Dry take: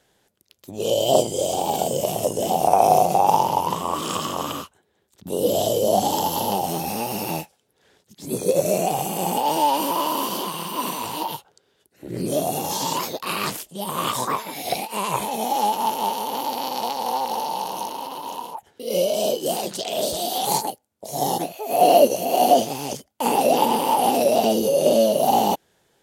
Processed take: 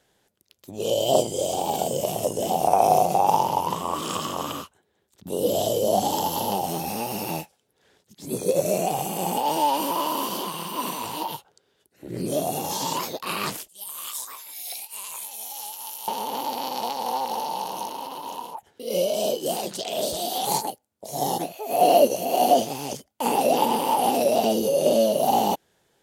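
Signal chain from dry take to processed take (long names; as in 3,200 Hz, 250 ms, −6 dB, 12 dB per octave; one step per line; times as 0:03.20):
0:13.68–0:16.08: first difference
level −2.5 dB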